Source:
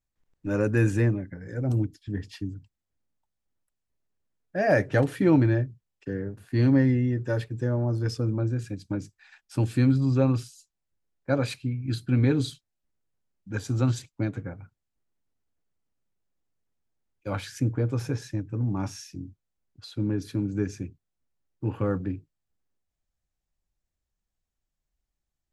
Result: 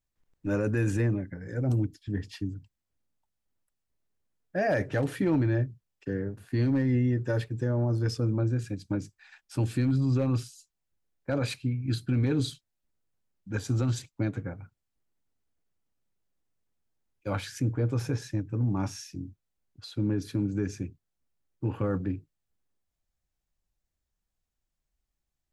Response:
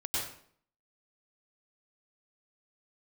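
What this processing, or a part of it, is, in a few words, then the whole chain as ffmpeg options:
clipper into limiter: -af "asoftclip=type=hard:threshold=-13dB,alimiter=limit=-19dB:level=0:latency=1:release=13"

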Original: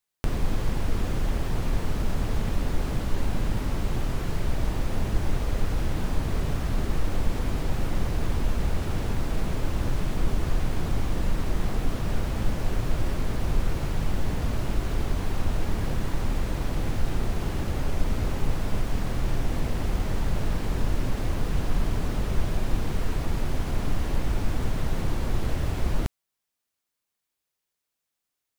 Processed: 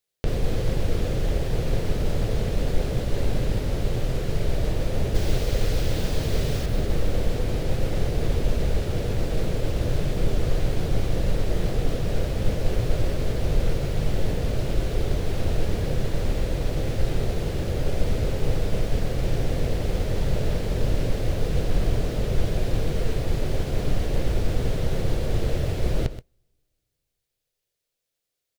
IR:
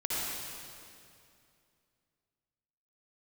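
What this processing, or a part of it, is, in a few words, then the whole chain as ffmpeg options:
keyed gated reverb: -filter_complex "[0:a]asettb=1/sr,asplit=3[link_01][link_02][link_03];[link_01]atrim=end=5.154[link_04];[link_02]atrim=start=5.15:end=6.66,asetpts=PTS-STARTPTS,afade=type=in:duration=0.004:curve=qsin,afade=type=out:start_time=1.506:duration=0.004:curve=qsin,aemphasis=mode=production:type=75kf[link_05];[link_03]atrim=start=6.656[link_06];[link_04][link_05]acrossfade=duration=0.004:curve1=hsin:curve2=qsin[link_07];[link_07][link_06]acrossfade=duration=0.004:curve1=qsin:curve2=hsin,asplit=3[link_08][link_09][link_10];[1:a]atrim=start_sample=2205[link_11];[link_09][link_11]afir=irnorm=-1:irlink=0[link_12];[link_10]apad=whole_len=1260625[link_13];[link_12][link_13]sidechaingate=range=-33dB:threshold=-23dB:ratio=16:detection=peak,volume=-15.5dB[link_14];[link_08][link_14]amix=inputs=2:normalize=0,aecho=1:1:127:0.211,acrossover=split=6000[link_15][link_16];[link_16]acompressor=threshold=-45dB:ratio=4:attack=1:release=60[link_17];[link_15][link_17]amix=inputs=2:normalize=0,equalizer=frequency=125:width_type=o:width=1:gain=4,equalizer=frequency=250:width_type=o:width=1:gain=-4,equalizer=frequency=500:width_type=o:width=1:gain=10,equalizer=frequency=1000:width_type=o:width=1:gain=-8,equalizer=frequency=4000:width_type=o:width=1:gain=3"

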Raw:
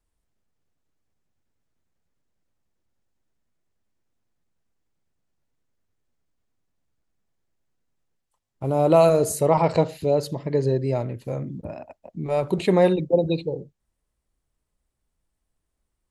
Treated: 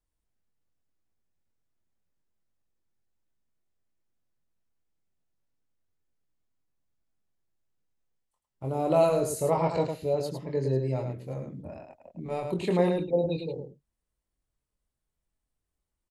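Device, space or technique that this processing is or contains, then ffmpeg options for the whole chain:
slapback doubling: -filter_complex "[0:a]asplit=3[link_01][link_02][link_03];[link_02]adelay=23,volume=-5dB[link_04];[link_03]adelay=106,volume=-6dB[link_05];[link_01][link_04][link_05]amix=inputs=3:normalize=0,volume=-8.5dB"

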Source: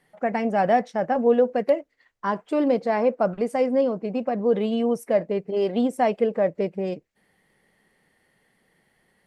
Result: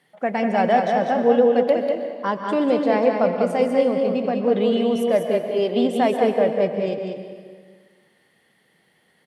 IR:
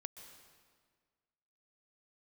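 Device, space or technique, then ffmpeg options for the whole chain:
PA in a hall: -filter_complex "[0:a]highpass=110,equalizer=frequency=3400:width_type=o:width=0.72:gain=6.5,aecho=1:1:195:0.562[link_01];[1:a]atrim=start_sample=2205[link_02];[link_01][link_02]afir=irnorm=-1:irlink=0,volume=6dB"

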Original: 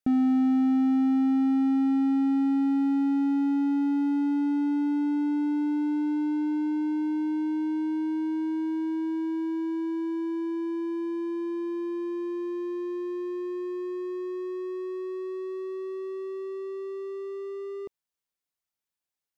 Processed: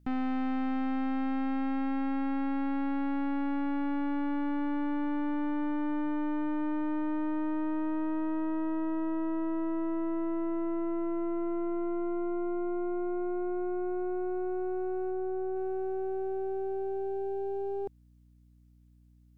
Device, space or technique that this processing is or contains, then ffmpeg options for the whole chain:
valve amplifier with mains hum: -filter_complex "[0:a]aeval=exprs='(tanh(70.8*val(0)+0.65)-tanh(0.65))/70.8':channel_layout=same,aeval=exprs='val(0)+0.000562*(sin(2*PI*60*n/s)+sin(2*PI*2*60*n/s)/2+sin(2*PI*3*60*n/s)/3+sin(2*PI*4*60*n/s)/4+sin(2*PI*5*60*n/s)/5)':channel_layout=same,asplit=3[link_01][link_02][link_03];[link_01]afade=type=out:start_time=15.1:duration=0.02[link_04];[link_02]lowpass=frequency=1700:poles=1,afade=type=in:start_time=15.1:duration=0.02,afade=type=out:start_time=15.55:duration=0.02[link_05];[link_03]afade=type=in:start_time=15.55:duration=0.02[link_06];[link_04][link_05][link_06]amix=inputs=3:normalize=0,volume=6.5dB"

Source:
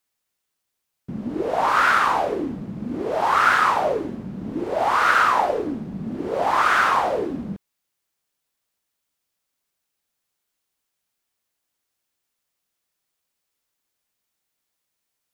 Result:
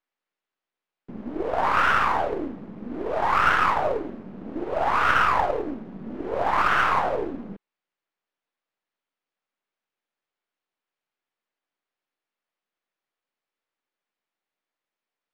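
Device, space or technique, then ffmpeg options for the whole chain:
crystal radio: -af "highpass=240,lowpass=2600,aeval=exprs='if(lt(val(0),0),0.447*val(0),val(0))':channel_layout=same"

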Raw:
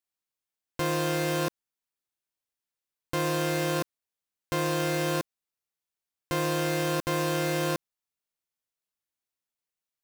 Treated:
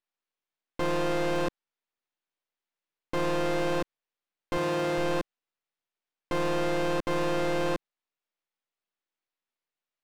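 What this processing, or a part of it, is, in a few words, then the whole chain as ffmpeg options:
crystal radio: -filter_complex "[0:a]highpass=230,lowpass=3500,aeval=exprs='if(lt(val(0),0),0.251*val(0),val(0))':channel_layout=same,asettb=1/sr,asplit=3[link_01][link_02][link_03];[link_01]atrim=end=4.574[link_04];[link_02]atrim=start=4.57:end=4.98,asetpts=PTS-STARTPTS,afade=type=in:duration=0.004:curve=qsin,afade=type=out:start_time=0.406:duration=0.004:curve=qsin,highpass=56[link_05];[link_03]atrim=start=4.976[link_06];[link_04][link_05]acrossfade=duration=0.004:curve1=hsin:curve2=qsin[link_07];[link_07][link_06]acrossfade=duration=0.004:curve1=qsin:curve2=hsin,volume=6dB"

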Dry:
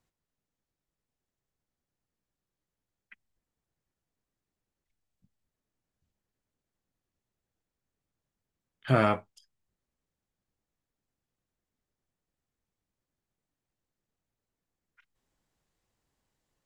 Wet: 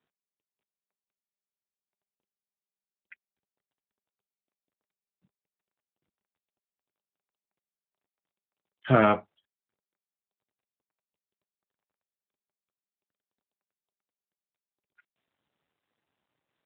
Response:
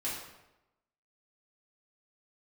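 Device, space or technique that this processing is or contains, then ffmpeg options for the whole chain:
mobile call with aggressive noise cancelling: -af "highpass=140,afftdn=noise_reduction=17:noise_floor=-57,volume=4.5dB" -ar 8000 -c:a libopencore_amrnb -b:a 12200

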